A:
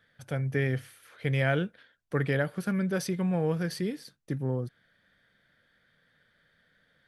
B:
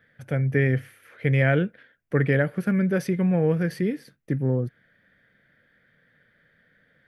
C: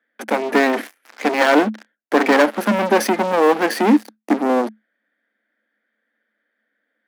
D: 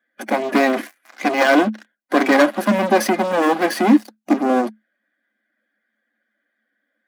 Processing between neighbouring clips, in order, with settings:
octave-band graphic EQ 125/250/500/1,000/2,000/4,000/8,000 Hz +4/+4/+4/−4/+7/−7/−7 dB; level +2 dB
leveller curve on the samples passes 5; Chebyshev high-pass with heavy ripple 210 Hz, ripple 6 dB; level +4 dB
spectral magnitudes quantised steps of 15 dB; notch comb filter 450 Hz; level +1.5 dB

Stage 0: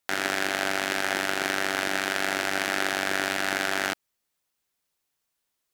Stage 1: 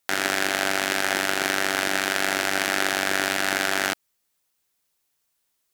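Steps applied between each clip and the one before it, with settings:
high-shelf EQ 5,300 Hz +4.5 dB
level +2.5 dB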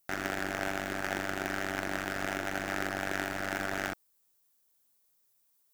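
running median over 15 samples
background noise violet −66 dBFS
level −5 dB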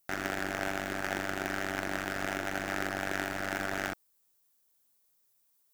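no processing that can be heard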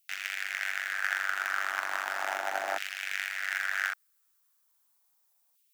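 auto-filter high-pass saw down 0.36 Hz 690–2,700 Hz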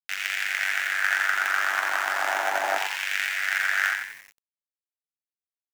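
on a send: echo with shifted repeats 90 ms, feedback 42%, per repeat +89 Hz, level −5.5 dB
on the sum: bit reduction 9 bits
level +6 dB

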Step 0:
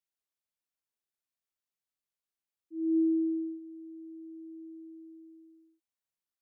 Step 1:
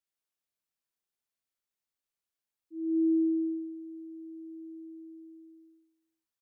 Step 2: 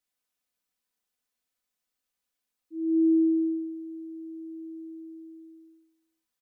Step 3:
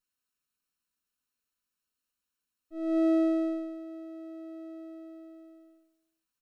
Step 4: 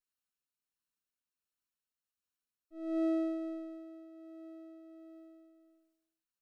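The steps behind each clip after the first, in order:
reverse bouncing-ball delay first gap 70 ms, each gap 1.15×, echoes 5; level −1.5 dB
comb filter 4 ms; level +4 dB
lower of the sound and its delayed copy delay 0.73 ms; level −1 dB
shaped tremolo triangle 1.4 Hz, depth 40%; level −6 dB

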